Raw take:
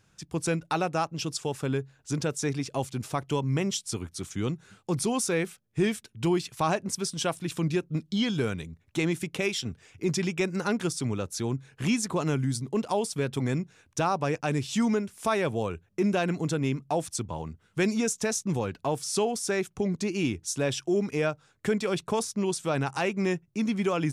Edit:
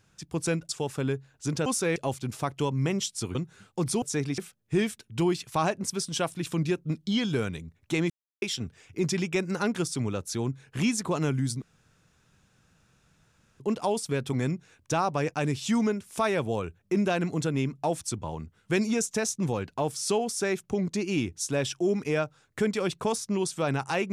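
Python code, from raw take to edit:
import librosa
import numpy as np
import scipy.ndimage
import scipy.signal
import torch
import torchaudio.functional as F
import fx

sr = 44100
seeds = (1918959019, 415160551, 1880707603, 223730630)

y = fx.edit(x, sr, fx.cut(start_s=0.69, length_s=0.65),
    fx.swap(start_s=2.31, length_s=0.36, other_s=5.13, other_length_s=0.3),
    fx.cut(start_s=4.06, length_s=0.4),
    fx.silence(start_s=9.15, length_s=0.32),
    fx.insert_room_tone(at_s=12.67, length_s=1.98), tone=tone)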